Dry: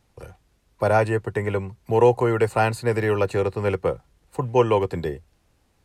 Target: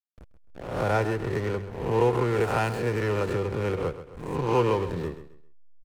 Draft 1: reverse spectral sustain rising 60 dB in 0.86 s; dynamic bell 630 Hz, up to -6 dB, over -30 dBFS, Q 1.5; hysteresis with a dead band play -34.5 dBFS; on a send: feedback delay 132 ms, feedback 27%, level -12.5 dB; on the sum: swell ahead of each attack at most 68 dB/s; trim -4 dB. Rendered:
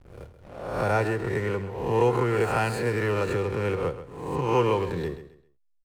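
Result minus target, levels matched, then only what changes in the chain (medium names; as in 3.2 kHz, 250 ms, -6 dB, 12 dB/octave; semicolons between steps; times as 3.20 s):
hysteresis with a dead band: distortion -10 dB
change: hysteresis with a dead band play -23.5 dBFS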